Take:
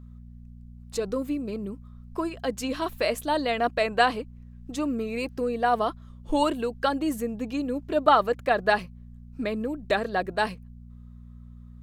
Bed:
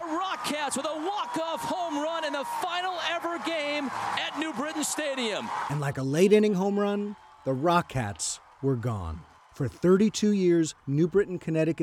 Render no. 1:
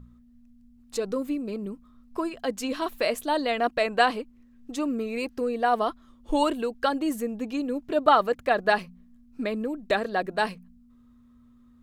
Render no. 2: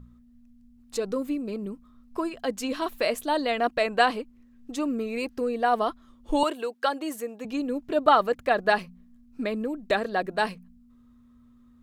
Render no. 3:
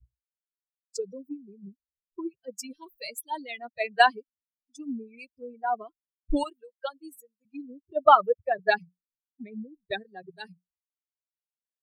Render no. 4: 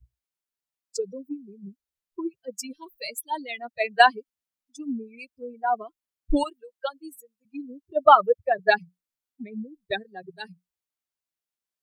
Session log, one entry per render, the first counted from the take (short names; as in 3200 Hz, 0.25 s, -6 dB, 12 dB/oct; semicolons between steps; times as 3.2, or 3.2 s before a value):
de-hum 60 Hz, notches 3
6.43–7.45 HPF 400 Hz
per-bin expansion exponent 3; three-band expander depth 70%
gain +3.5 dB; limiter -2 dBFS, peak gain reduction 2 dB